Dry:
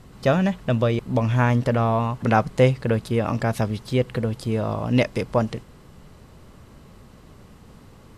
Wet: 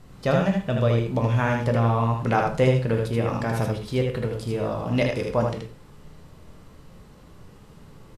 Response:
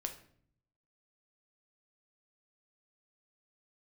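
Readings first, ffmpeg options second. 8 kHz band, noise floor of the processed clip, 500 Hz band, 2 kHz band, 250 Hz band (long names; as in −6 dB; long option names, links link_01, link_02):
−1.5 dB, −49 dBFS, −1.0 dB, −1.0 dB, −2.5 dB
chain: -filter_complex "[0:a]aecho=1:1:78:0.631[link_01];[1:a]atrim=start_sample=2205,atrim=end_sample=6174[link_02];[link_01][link_02]afir=irnorm=-1:irlink=0,volume=-2dB"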